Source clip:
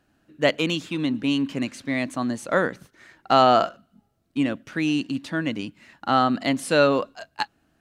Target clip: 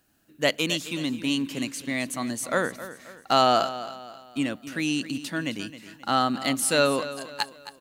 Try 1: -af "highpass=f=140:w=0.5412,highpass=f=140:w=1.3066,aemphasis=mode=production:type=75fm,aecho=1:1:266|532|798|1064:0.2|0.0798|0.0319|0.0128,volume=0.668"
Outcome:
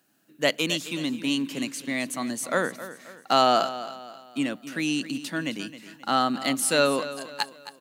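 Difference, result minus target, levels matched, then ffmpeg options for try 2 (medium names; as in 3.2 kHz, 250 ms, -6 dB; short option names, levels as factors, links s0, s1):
125 Hz band -2.5 dB
-af "aemphasis=mode=production:type=75fm,aecho=1:1:266|532|798|1064:0.2|0.0798|0.0319|0.0128,volume=0.668"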